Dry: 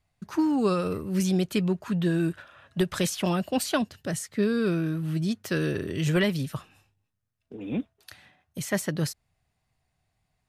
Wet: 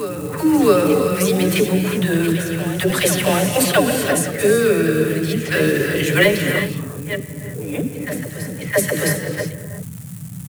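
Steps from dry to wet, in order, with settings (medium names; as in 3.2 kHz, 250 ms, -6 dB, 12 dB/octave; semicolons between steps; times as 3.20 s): chunks repeated in reverse 477 ms, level -11 dB; ten-band graphic EQ 125 Hz -4 dB, 500 Hz +9 dB, 2 kHz +10 dB, 4 kHz +7 dB, 8 kHz -6 dB; gated-style reverb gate 400 ms rising, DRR 5 dB; level-controlled noise filter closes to 560 Hz, open at -21 dBFS; band noise 87–200 Hz -37 dBFS; in parallel at -9.5 dB: short-mantissa float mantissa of 2-bit; on the sum: comb 6.9 ms, depth 35%; phase dispersion lows, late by 91 ms, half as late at 410 Hz; crackle 580 per s -36 dBFS; resonant high shelf 6.6 kHz +11.5 dB, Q 1.5; reverse echo 662 ms -12.5 dB; attacks held to a fixed rise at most 270 dB/s; trim +1.5 dB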